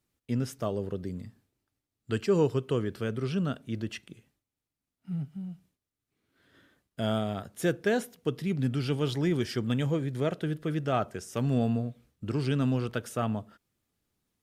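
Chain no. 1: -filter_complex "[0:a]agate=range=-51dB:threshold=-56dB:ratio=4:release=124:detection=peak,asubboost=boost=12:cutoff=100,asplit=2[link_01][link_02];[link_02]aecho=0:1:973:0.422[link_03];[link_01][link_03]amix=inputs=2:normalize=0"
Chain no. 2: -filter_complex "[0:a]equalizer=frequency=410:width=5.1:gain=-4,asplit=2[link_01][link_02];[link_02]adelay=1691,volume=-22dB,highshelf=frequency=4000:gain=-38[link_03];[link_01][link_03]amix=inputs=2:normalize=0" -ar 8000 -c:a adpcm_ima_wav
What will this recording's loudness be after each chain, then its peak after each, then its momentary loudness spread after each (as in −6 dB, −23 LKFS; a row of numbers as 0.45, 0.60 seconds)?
−24.5, −31.5 LKFS; −9.0, −14.5 dBFS; 17, 14 LU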